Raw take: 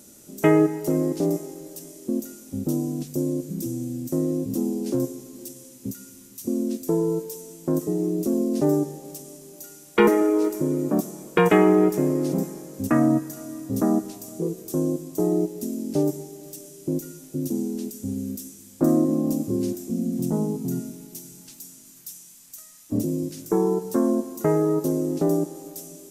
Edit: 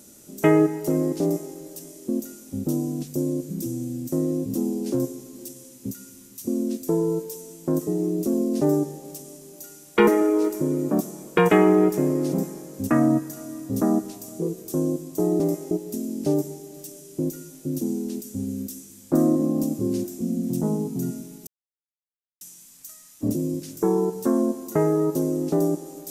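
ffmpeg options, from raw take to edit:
-filter_complex "[0:a]asplit=5[s0][s1][s2][s3][s4];[s0]atrim=end=15.402[s5];[s1]atrim=start=1.218:end=1.532[s6];[s2]atrim=start=15.398:end=21.16,asetpts=PTS-STARTPTS,afade=t=out:st=5.758:d=0.004:c=hsin[s7];[s3]atrim=start=21.16:end=22.1,asetpts=PTS-STARTPTS,volume=0[s8];[s4]atrim=start=22.1,asetpts=PTS-STARTPTS,afade=t=in:d=0.004:c=hsin[s9];[s5][s6]acrossfade=d=0.004:c1=hsin:c2=hsin[s10];[s7][s8][s9]concat=n=3:v=0:a=1[s11];[s10][s11]acrossfade=d=0.004:c1=hsin:c2=hsin"

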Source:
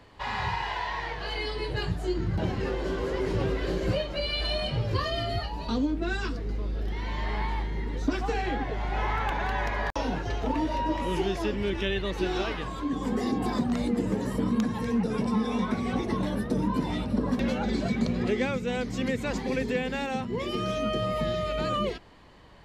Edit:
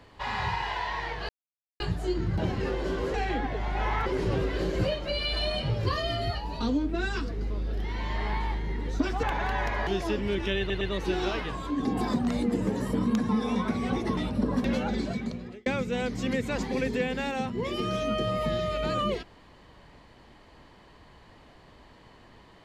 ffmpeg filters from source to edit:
-filter_complex "[0:a]asplit=13[s0][s1][s2][s3][s4][s5][s6][s7][s8][s9][s10][s11][s12];[s0]atrim=end=1.29,asetpts=PTS-STARTPTS,afade=t=out:st=1.286:d=0.004:c=hsin[s13];[s1]atrim=start=1.29:end=1.8,asetpts=PTS-STARTPTS,volume=0[s14];[s2]atrim=start=1.8:end=3.142,asetpts=PTS-STARTPTS,afade=t=in:d=0.004:c=hsin[s15];[s3]atrim=start=8.308:end=9.232[s16];[s4]atrim=start=3.138:end=8.312[s17];[s5]atrim=start=9.228:end=9.872[s18];[s6]atrim=start=11.218:end=12.052[s19];[s7]atrim=start=11.938:end=12.052[s20];[s8]atrim=start=11.938:end=12.982[s21];[s9]atrim=start=13.298:end=14.742[s22];[s10]atrim=start=15.318:end=16.202[s23];[s11]atrim=start=16.918:end=18.41,asetpts=PTS-STARTPTS,afade=t=out:st=0.662:d=0.83[s24];[s12]atrim=start=18.41,asetpts=PTS-STARTPTS,afade=t=in:d=0.004:c=hsin[s25];[s13][s14][s15]concat=n=3:v=0:a=1[s26];[s26][s16]acrossfade=d=0.004:c1=hsin:c2=hsin[s27];[s27][s17]acrossfade=d=0.004:c1=hsin:c2=hsin[s28];[s28][s18]acrossfade=d=0.004:c1=hsin:c2=hsin[s29];[s29][s19]acrossfade=d=0.004:c1=hsin:c2=hsin[s30];[s30][s20]acrossfade=d=0.004:c1=hsin:c2=hsin[s31];[s31][s21]acrossfade=d=0.004:c1=hsin:c2=hsin[s32];[s32][s22]acrossfade=d=0.004:c1=hsin:c2=hsin[s33];[s33][s23]acrossfade=d=0.004:c1=hsin:c2=hsin[s34];[s24][s25]concat=n=2:v=0:a=1[s35];[s34][s35]acrossfade=d=0.004:c1=hsin:c2=hsin"

